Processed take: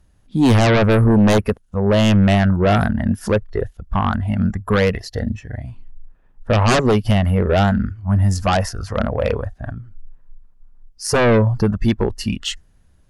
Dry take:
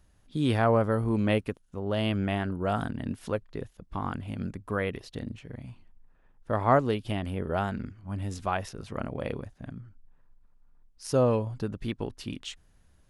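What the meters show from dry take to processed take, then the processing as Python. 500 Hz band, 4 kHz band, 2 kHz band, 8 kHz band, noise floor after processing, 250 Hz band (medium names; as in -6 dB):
+10.5 dB, +14.0 dB, +13.0 dB, +16.5 dB, -54 dBFS, +13.5 dB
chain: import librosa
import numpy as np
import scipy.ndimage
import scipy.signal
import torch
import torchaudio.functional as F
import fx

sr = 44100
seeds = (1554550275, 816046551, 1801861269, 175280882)

p1 = fx.noise_reduce_blind(x, sr, reduce_db=13)
p2 = fx.fold_sine(p1, sr, drive_db=16, ceiling_db=-8.5)
p3 = p1 + (p2 * librosa.db_to_amplitude(-3.5))
p4 = fx.low_shelf(p3, sr, hz=380.0, db=4.5)
y = p4 * librosa.db_to_amplitude(-2.0)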